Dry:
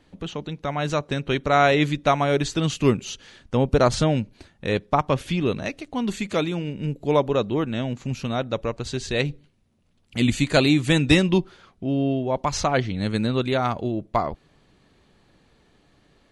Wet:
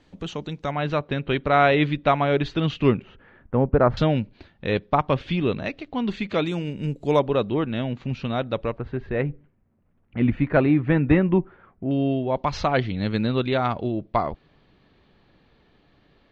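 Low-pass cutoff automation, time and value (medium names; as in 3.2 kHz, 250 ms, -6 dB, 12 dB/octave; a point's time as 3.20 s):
low-pass 24 dB/octave
8 kHz
from 0.71 s 3.6 kHz
from 3.02 s 1.8 kHz
from 3.97 s 4.1 kHz
from 6.46 s 9.7 kHz
from 7.19 s 4 kHz
from 8.78 s 1.9 kHz
from 11.91 s 4.3 kHz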